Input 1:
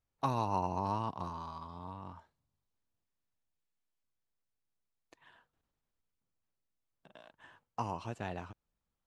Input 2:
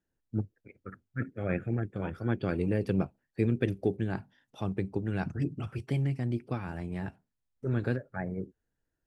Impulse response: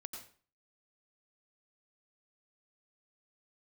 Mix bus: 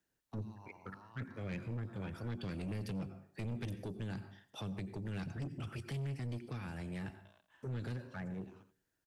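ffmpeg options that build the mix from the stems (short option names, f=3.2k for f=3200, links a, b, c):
-filter_complex "[0:a]acompressor=threshold=-41dB:ratio=10,adelay=100,volume=-11.5dB,asplit=2[a][b];[b]volume=-12.5dB[c];[1:a]highpass=f=87:p=1,asoftclip=type=tanh:threshold=-16.5dB,volume=-0.5dB,asplit=2[d][e];[e]volume=-5dB[f];[2:a]atrim=start_sample=2205[g];[f][g]afir=irnorm=-1:irlink=0[h];[c]aecho=0:1:85:1[i];[a][d][h][i]amix=inputs=4:normalize=0,tiltshelf=f=970:g=-3.5,acrossover=split=230|3000[j][k][l];[k]acompressor=threshold=-45dB:ratio=5[m];[j][m][l]amix=inputs=3:normalize=0,asoftclip=type=tanh:threshold=-36dB"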